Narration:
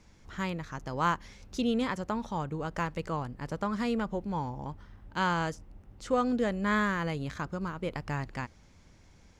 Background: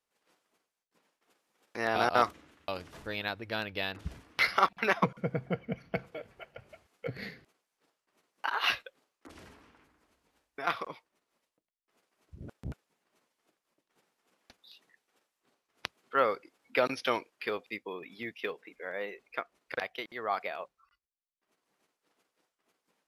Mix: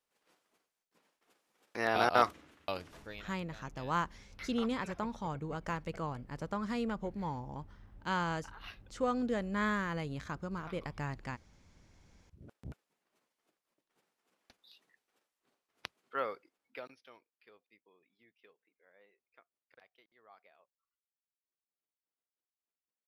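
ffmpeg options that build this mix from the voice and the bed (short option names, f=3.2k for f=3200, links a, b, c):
-filter_complex "[0:a]adelay=2900,volume=-5dB[a];[1:a]volume=14.5dB,afade=t=out:st=2.74:d=0.55:silence=0.1,afade=t=in:st=11.88:d=0.92:silence=0.16788,afade=t=out:st=15.78:d=1.21:silence=0.0749894[b];[a][b]amix=inputs=2:normalize=0"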